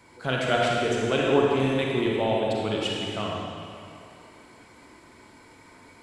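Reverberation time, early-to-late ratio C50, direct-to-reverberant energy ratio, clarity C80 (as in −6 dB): 2.5 s, −1.5 dB, −3.0 dB, 0.0 dB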